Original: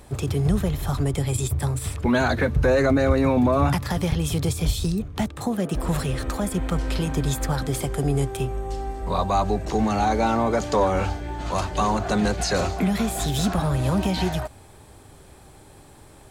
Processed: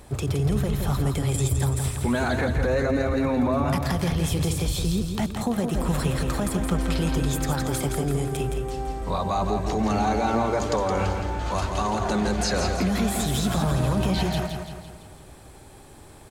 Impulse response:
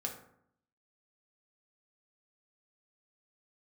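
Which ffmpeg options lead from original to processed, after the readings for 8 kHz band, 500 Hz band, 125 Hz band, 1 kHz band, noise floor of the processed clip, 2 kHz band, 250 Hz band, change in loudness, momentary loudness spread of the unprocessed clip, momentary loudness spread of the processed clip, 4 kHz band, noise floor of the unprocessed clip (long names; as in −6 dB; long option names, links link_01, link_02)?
0.0 dB, −2.5 dB, −0.5 dB, −2.0 dB, −46 dBFS, −2.0 dB, −1.5 dB, −1.5 dB, 8 LU, 5 LU, 0.0 dB, −48 dBFS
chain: -filter_complex "[0:a]alimiter=limit=-16.5dB:level=0:latency=1:release=34,asplit=2[link_01][link_02];[link_02]aecho=0:1:168|336|504|672|840|1008:0.501|0.256|0.13|0.0665|0.0339|0.0173[link_03];[link_01][link_03]amix=inputs=2:normalize=0"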